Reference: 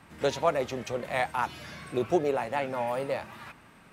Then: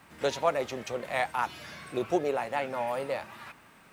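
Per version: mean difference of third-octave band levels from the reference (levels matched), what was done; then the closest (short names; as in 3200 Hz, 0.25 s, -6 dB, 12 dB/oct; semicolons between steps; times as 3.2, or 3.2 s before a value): 2.0 dB: low shelf 280 Hz -6.5 dB; requantised 12-bit, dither triangular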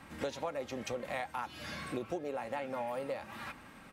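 4.5 dB: comb 3.7 ms, depth 32%; compressor 6:1, threshold -36 dBFS, peak gain reduction 16 dB; gain +1 dB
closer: first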